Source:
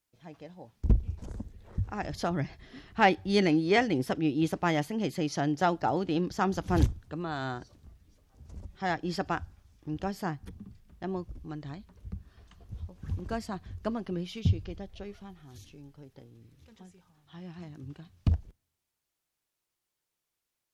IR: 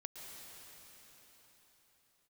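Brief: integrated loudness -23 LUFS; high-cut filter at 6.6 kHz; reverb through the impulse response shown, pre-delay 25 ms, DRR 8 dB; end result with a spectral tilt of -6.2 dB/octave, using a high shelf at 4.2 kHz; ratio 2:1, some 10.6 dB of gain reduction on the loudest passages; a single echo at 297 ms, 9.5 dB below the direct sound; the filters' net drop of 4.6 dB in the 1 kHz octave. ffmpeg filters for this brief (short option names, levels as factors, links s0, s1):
-filter_complex "[0:a]lowpass=6600,equalizer=f=1000:t=o:g=-6.5,highshelf=f=4200:g=-5,acompressor=threshold=0.0141:ratio=2,aecho=1:1:297:0.335,asplit=2[s0][s1];[1:a]atrim=start_sample=2205,adelay=25[s2];[s1][s2]afir=irnorm=-1:irlink=0,volume=0.562[s3];[s0][s3]amix=inputs=2:normalize=0,volume=6.31"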